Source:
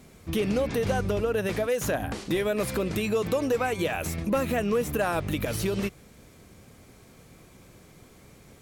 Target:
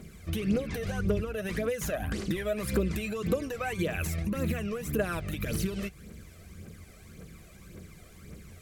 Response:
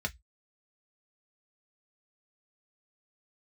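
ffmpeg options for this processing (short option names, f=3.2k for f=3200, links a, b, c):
-filter_complex "[0:a]equalizer=f=850:w=2.4:g=-12,acompressor=threshold=-31dB:ratio=4,aphaser=in_gain=1:out_gain=1:delay=1.7:decay=0.58:speed=1.8:type=triangular,asplit=2[a][b];[1:a]atrim=start_sample=2205,asetrate=52920,aresample=44100[c];[b][c]afir=irnorm=-1:irlink=0,volume=-13dB[d];[a][d]amix=inputs=2:normalize=0"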